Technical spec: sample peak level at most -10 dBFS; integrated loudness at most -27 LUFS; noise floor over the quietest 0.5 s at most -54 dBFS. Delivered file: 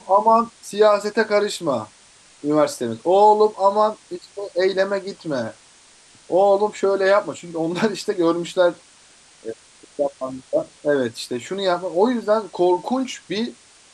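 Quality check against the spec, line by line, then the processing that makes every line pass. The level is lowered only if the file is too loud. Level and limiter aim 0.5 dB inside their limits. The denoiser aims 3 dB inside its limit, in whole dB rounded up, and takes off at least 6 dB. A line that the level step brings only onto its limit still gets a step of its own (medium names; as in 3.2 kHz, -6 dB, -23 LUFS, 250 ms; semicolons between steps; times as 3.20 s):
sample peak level -5.0 dBFS: fail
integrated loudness -20.5 LUFS: fail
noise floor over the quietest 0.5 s -51 dBFS: fail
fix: trim -7 dB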